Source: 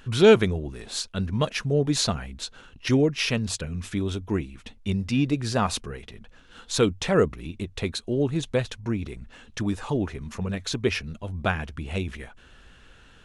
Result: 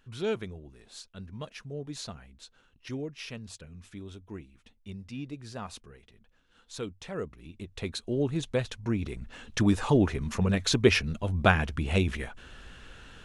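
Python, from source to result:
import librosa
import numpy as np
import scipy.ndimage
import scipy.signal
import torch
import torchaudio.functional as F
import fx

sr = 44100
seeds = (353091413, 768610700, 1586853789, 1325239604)

y = fx.gain(x, sr, db=fx.line((7.17, -15.5), (8.02, -4.0), (8.61, -4.0), (9.62, 3.5)))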